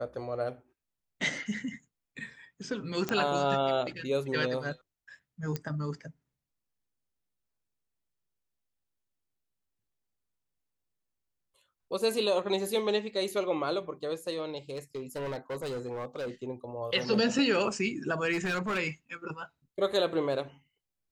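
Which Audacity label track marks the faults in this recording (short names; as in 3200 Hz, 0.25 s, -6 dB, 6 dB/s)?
3.090000	3.090000	pop -15 dBFS
5.560000	5.560000	pop -19 dBFS
14.730000	16.300000	clipped -32 dBFS
18.320000	18.790000	clipped -26.5 dBFS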